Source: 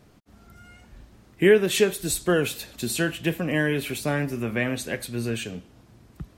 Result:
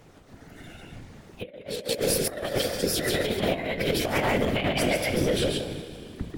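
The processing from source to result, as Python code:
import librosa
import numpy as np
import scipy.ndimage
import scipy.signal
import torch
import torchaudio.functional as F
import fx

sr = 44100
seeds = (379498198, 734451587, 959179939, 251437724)

y = fx.peak_eq(x, sr, hz=11000.0, db=-5.5, octaves=1.2)
y = y + 10.0 ** (-3.0 / 20.0) * np.pad(y, (int(141 * sr / 1000.0), 0))[:len(y)]
y = fx.rev_schroeder(y, sr, rt60_s=2.4, comb_ms=26, drr_db=9.5)
y = fx.whisperise(y, sr, seeds[0])
y = fx.hum_notches(y, sr, base_hz=60, count=6)
y = fx.over_compress(y, sr, threshold_db=-26.0, ratio=-0.5)
y = fx.formant_shift(y, sr, semitones=4)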